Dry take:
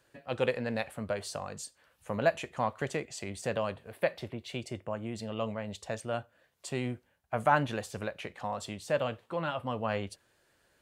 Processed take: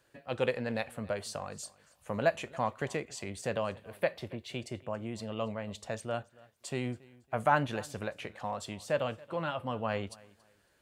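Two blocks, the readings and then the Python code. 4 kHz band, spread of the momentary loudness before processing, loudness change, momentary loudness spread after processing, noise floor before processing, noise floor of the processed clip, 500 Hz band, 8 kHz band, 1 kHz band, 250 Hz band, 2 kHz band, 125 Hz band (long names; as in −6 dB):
−1.0 dB, 10 LU, −1.0 dB, 10 LU, −71 dBFS, −70 dBFS, −1.0 dB, −1.0 dB, −1.0 dB, −1.0 dB, −1.0 dB, −1.0 dB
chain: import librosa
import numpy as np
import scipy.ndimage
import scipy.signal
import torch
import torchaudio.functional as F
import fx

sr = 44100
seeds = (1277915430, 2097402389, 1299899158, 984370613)

y = fx.echo_feedback(x, sr, ms=278, feedback_pct=26, wet_db=-23.0)
y = F.gain(torch.from_numpy(y), -1.0).numpy()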